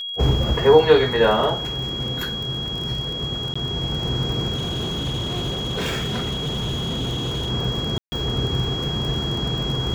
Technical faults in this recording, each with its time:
crackle 31 per s -27 dBFS
whine 3.3 kHz -27 dBFS
3.54–3.56 s: dropout 15 ms
4.54–7.50 s: clipped -21.5 dBFS
7.98–8.12 s: dropout 140 ms

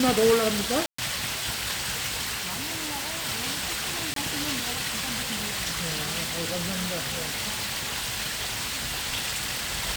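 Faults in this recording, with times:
0.86–0.98 s: dropout 124 ms
2.35–3.25 s: clipped -27.5 dBFS
4.14–4.16 s: dropout 23 ms
6.23–9.07 s: clipped -25.5 dBFS

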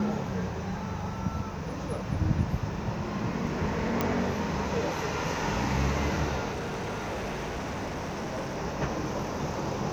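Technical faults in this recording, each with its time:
4.01 s: pop -12 dBFS
6.51–8.58 s: clipped -30 dBFS

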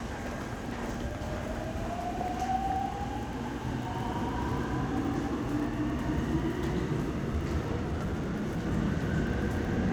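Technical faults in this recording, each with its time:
crackle 12 per s -37 dBFS
7.82–8.67 s: clipped -28.5 dBFS

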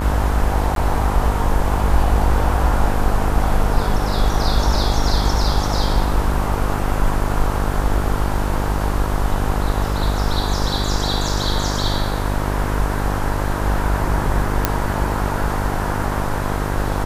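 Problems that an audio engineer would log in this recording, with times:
buzz 50 Hz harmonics 28 -22 dBFS
0.75–0.76 s: dropout 12 ms
14.65 s: pop 0 dBFS

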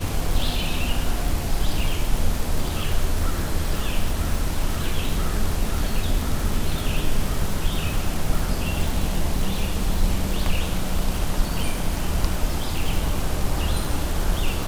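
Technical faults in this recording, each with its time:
crackle 170 per s -25 dBFS

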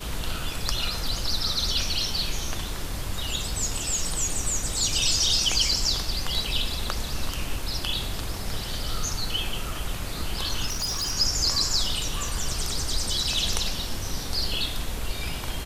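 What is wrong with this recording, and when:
10.66–11.13 s: clipped -24.5 dBFS

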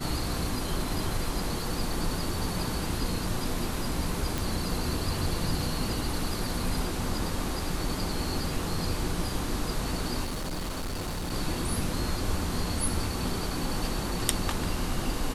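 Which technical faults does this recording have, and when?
4.38 s: pop
10.24–11.32 s: clipped -29.5 dBFS

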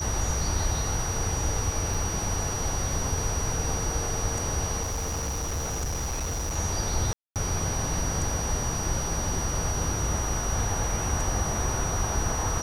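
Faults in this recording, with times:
whine 5.8 kHz -32 dBFS
1.94 s: dropout 3.8 ms
4.82–6.57 s: clipped -26.5 dBFS
7.13–7.36 s: dropout 228 ms

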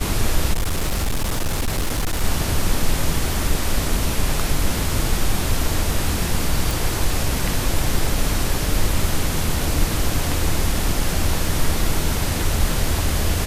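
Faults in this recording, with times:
0.53–2.24 s: clipped -17 dBFS
6.71 s: pop

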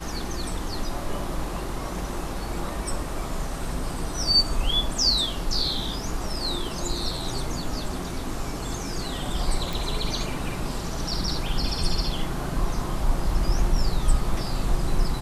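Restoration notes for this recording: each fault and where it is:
9.73 s: pop

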